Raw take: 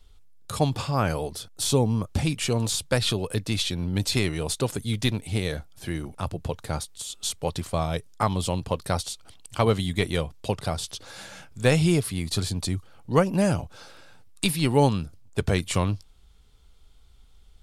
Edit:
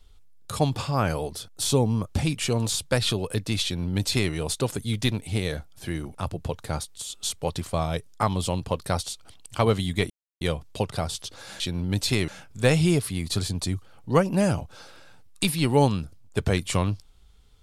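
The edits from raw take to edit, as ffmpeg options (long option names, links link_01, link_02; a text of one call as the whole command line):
ffmpeg -i in.wav -filter_complex "[0:a]asplit=4[link_01][link_02][link_03][link_04];[link_01]atrim=end=10.1,asetpts=PTS-STARTPTS,afade=type=out:start_time=10.096:duration=0.004:curve=hsin,apad=pad_dur=0.31[link_05];[link_02]atrim=start=10.1:end=11.292,asetpts=PTS-STARTPTS,afade=type=in:duration=0.004:curve=hsin[link_06];[link_03]atrim=start=3.638:end=4.322[link_07];[link_04]atrim=start=11.288[link_08];[link_05][link_06]concat=n=2:v=0:a=1[link_09];[link_09][link_07]acrossfade=duration=0.004:curve1=hsin:curve2=hsin[link_10];[link_10][link_08]acrossfade=duration=0.004:curve1=hsin:curve2=hsin" out.wav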